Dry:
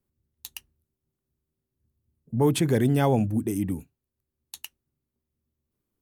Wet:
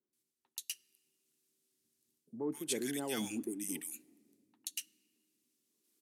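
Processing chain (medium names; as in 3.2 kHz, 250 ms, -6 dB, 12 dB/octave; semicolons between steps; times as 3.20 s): high-pass 230 Hz 12 dB/octave; differentiator; bands offset in time lows, highs 130 ms, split 1.2 kHz; level rider gain up to 6 dB; resonant low shelf 470 Hz +9.5 dB, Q 1.5; reverse; compression 4:1, threshold -47 dBFS, peak gain reduction 21 dB; reverse; low-pass 8.9 kHz 12 dB/octave; on a send at -22.5 dB: reverberation RT60 2.6 s, pre-delay 4 ms; on the sum: trim +11 dB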